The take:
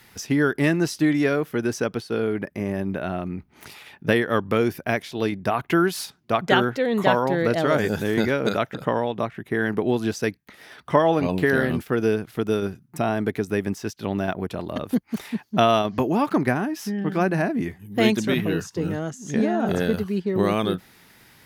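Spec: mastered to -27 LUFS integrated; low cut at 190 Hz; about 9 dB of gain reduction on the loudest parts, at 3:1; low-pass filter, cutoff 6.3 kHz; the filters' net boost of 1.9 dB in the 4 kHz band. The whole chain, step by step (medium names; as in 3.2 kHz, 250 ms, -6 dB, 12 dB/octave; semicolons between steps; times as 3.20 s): high-pass 190 Hz; low-pass 6.3 kHz; peaking EQ 4 kHz +3 dB; compression 3:1, threshold -25 dBFS; trim +2.5 dB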